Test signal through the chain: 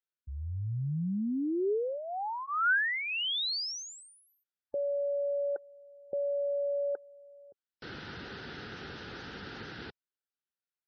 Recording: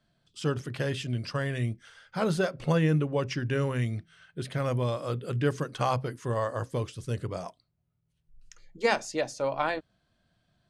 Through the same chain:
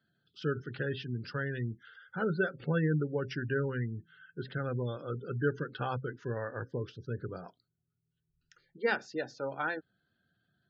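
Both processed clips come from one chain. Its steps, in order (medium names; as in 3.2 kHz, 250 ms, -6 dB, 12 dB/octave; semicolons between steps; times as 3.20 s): cabinet simulation 100–4800 Hz, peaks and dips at 410 Hz +4 dB, 630 Hz -9 dB, 1 kHz -5 dB, 1.5 kHz +8 dB, 2.3 kHz -5 dB; band-stop 1.1 kHz, Q 11; spectral gate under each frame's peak -25 dB strong; trim -4.5 dB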